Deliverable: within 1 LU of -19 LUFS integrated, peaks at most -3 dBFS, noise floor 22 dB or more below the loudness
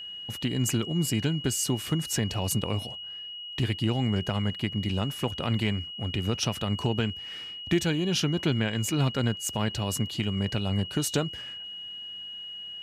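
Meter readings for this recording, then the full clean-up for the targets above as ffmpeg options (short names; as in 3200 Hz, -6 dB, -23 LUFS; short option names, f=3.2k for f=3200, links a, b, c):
steady tone 2900 Hz; tone level -37 dBFS; loudness -29.0 LUFS; peak -14.0 dBFS; loudness target -19.0 LUFS
-> -af "bandreject=f=2.9k:w=30"
-af "volume=10dB"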